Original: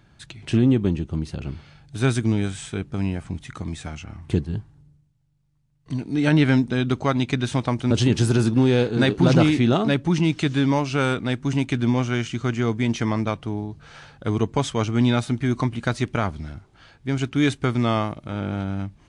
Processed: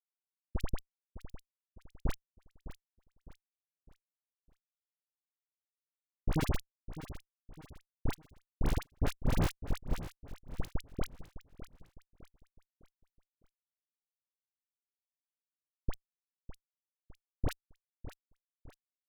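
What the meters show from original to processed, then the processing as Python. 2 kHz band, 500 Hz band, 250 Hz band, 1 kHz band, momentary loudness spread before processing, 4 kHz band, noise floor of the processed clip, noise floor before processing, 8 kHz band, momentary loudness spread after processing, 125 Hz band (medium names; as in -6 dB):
-22.0 dB, -23.0 dB, -25.0 dB, -20.0 dB, 14 LU, -21.5 dB, under -85 dBFS, -58 dBFS, -17.0 dB, 21 LU, -20.0 dB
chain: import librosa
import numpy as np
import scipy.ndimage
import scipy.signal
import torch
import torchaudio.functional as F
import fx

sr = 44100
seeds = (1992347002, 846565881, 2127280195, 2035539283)

p1 = fx.freq_snap(x, sr, grid_st=2)
p2 = fx.high_shelf(p1, sr, hz=2500.0, db=-3.0)
p3 = fx.power_curve(p2, sr, exponent=2.0)
p4 = fx.schmitt(p3, sr, flips_db=-15.5)
p5 = fx.dispersion(p4, sr, late='highs', ms=53.0, hz=1200.0)
p6 = p5 + fx.echo_feedback(p5, sr, ms=607, feedback_pct=40, wet_db=-13.5, dry=0)
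y = p6 * 10.0 ** (6.5 / 20.0)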